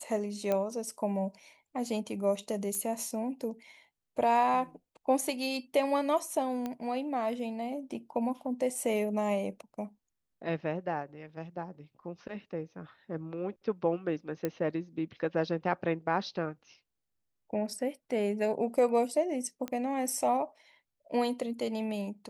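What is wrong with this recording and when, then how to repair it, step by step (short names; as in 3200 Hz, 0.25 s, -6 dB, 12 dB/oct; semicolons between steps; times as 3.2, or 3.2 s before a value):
0.52 pop -17 dBFS
2.75 pop -22 dBFS
6.66 pop -22 dBFS
14.45 pop -18 dBFS
19.68 pop -22 dBFS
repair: de-click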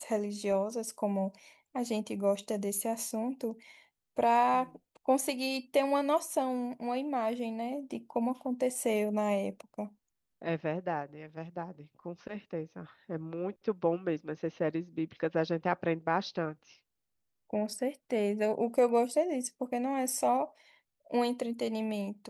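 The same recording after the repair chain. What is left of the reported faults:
19.68 pop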